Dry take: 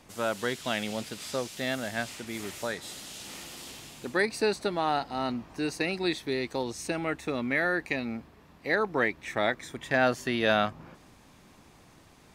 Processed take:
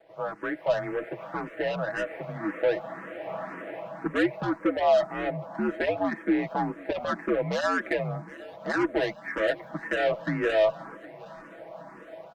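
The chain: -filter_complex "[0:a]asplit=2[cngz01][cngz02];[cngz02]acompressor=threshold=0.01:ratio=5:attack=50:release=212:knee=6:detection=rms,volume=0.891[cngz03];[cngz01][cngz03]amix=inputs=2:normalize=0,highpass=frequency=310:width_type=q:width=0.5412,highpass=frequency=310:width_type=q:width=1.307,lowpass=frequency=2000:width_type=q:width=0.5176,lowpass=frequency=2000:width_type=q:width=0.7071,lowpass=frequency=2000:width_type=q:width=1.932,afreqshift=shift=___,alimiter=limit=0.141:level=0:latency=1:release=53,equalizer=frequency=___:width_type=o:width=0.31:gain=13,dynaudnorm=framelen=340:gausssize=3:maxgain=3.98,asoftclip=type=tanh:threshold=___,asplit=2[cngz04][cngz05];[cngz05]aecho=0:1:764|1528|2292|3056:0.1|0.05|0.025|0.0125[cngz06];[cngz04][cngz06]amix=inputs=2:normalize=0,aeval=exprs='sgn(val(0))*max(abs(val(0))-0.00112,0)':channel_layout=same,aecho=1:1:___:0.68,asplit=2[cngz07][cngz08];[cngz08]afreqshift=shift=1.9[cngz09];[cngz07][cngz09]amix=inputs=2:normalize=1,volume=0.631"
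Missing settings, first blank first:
-85, 610, 0.158, 6.1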